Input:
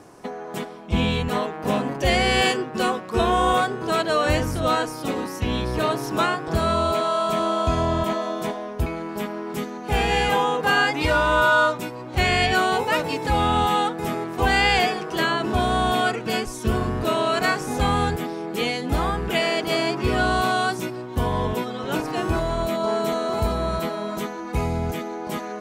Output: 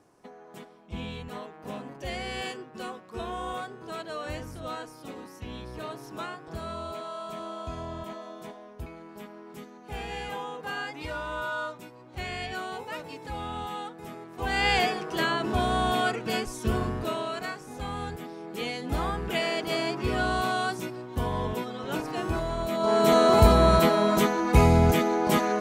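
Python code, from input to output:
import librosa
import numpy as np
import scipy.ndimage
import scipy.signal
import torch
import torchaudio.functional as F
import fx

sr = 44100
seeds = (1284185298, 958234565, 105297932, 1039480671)

y = fx.gain(x, sr, db=fx.line((14.29, -15.0), (14.69, -4.5), (16.84, -4.5), (17.62, -15.5), (19.01, -6.0), (22.66, -6.0), (23.17, 6.0)))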